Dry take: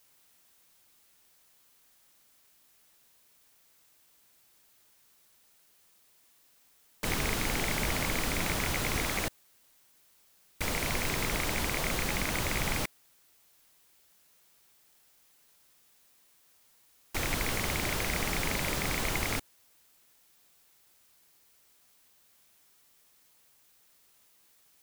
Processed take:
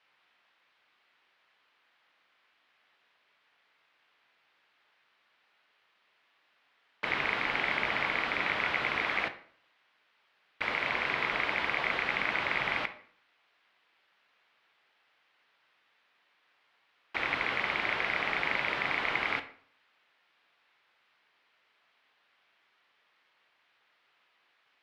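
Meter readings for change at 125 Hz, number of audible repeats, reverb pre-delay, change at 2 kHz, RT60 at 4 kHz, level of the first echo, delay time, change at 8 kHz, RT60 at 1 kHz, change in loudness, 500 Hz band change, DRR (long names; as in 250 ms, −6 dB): −13.5 dB, no echo audible, 10 ms, +5.0 dB, 0.40 s, no echo audible, no echo audible, below −20 dB, 0.55 s, +1.0 dB, −1.5 dB, 8.5 dB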